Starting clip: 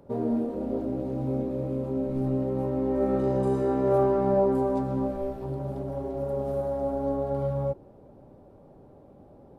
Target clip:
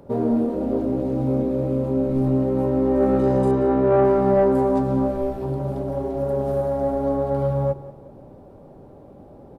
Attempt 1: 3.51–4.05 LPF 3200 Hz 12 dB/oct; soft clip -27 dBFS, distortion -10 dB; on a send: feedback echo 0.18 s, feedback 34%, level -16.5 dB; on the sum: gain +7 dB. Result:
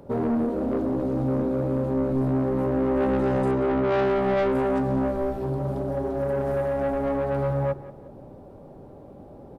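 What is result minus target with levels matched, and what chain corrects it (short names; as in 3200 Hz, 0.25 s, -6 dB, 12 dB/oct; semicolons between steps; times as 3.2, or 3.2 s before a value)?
soft clip: distortion +12 dB
3.51–4.05 LPF 3200 Hz 12 dB/oct; soft clip -16.5 dBFS, distortion -22 dB; on a send: feedback echo 0.18 s, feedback 34%, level -16.5 dB; on the sum: gain +7 dB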